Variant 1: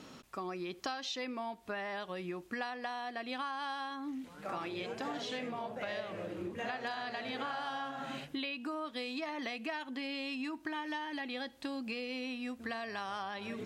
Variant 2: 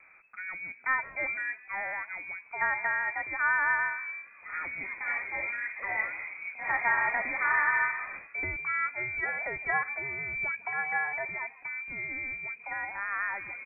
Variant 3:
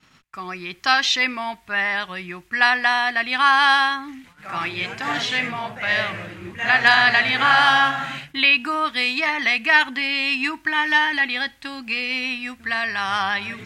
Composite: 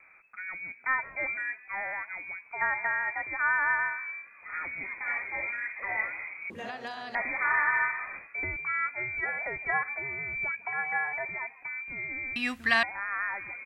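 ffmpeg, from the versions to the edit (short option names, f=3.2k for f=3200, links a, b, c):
-filter_complex "[1:a]asplit=3[a][b][c];[a]atrim=end=6.502[d];[0:a]atrim=start=6.498:end=7.152[e];[b]atrim=start=7.148:end=12.362[f];[2:a]atrim=start=12.358:end=12.832[g];[c]atrim=start=12.828[h];[d][e]acrossfade=d=0.004:c1=hsin:c2=hsin[i];[i][f]acrossfade=d=0.004:c1=hsin:c2=hsin[j];[j][g]acrossfade=d=0.004:c1=hsin:c2=hsin[k];[k][h]acrossfade=d=0.004:c1=hsin:c2=hsin"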